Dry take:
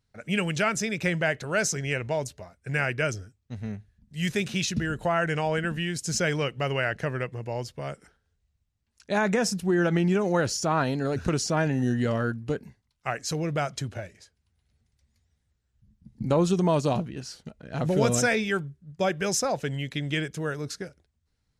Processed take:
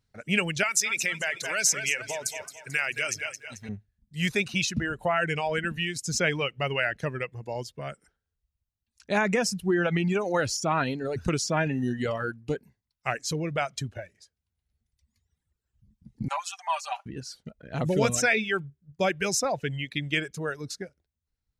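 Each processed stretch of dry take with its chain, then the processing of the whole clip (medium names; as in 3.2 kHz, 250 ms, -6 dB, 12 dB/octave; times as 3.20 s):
0.63–3.69 s: two-band feedback delay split 370 Hz, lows 148 ms, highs 220 ms, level -9 dB + compression 4:1, threshold -26 dBFS + tilt EQ +3.5 dB/octave
16.28–17.06 s: elliptic high-pass 770 Hz, stop band 50 dB + peaking EQ 3.8 kHz -6 dB 0.31 oct + comb 5.1 ms, depth 75%
whole clip: reverb removal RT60 1.5 s; dynamic bell 2.4 kHz, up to +6 dB, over -46 dBFS, Q 2.2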